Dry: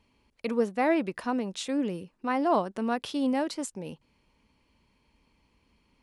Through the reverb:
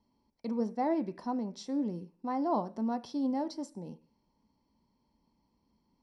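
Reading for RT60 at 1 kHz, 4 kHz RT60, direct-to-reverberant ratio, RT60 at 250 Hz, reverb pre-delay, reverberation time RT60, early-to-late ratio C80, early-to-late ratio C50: 0.45 s, no reading, 11.5 dB, 0.55 s, 3 ms, 0.45 s, 24.0 dB, 19.5 dB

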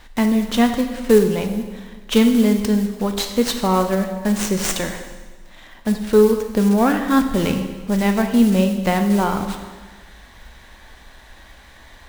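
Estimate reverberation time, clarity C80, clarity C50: 1.4 s, 9.0 dB, 7.5 dB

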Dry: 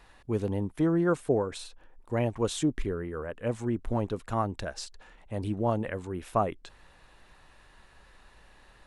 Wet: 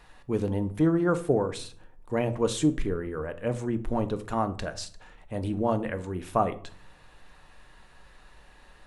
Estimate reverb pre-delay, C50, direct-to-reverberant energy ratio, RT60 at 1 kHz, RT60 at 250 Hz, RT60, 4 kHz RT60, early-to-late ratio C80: 4 ms, 16.0 dB, 9.0 dB, 0.50 s, 0.85 s, 0.50 s, 0.35 s, 20.5 dB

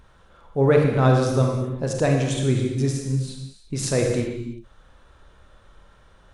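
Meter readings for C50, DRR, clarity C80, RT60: 2.5 dB, 1.0 dB, 5.0 dB, no single decay rate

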